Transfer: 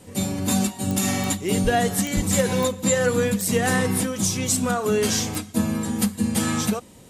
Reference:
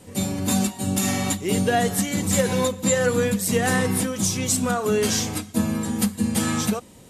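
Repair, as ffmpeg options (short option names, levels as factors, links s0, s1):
-filter_complex "[0:a]adeclick=t=4,asplit=3[s0][s1][s2];[s0]afade=t=out:st=1.63:d=0.02[s3];[s1]highpass=f=140:w=0.5412,highpass=f=140:w=1.3066,afade=t=in:st=1.63:d=0.02,afade=t=out:st=1.75:d=0.02[s4];[s2]afade=t=in:st=1.75:d=0.02[s5];[s3][s4][s5]amix=inputs=3:normalize=0,asplit=3[s6][s7][s8];[s6]afade=t=out:st=2.15:d=0.02[s9];[s7]highpass=f=140:w=0.5412,highpass=f=140:w=1.3066,afade=t=in:st=2.15:d=0.02,afade=t=out:st=2.27:d=0.02[s10];[s8]afade=t=in:st=2.27:d=0.02[s11];[s9][s10][s11]amix=inputs=3:normalize=0"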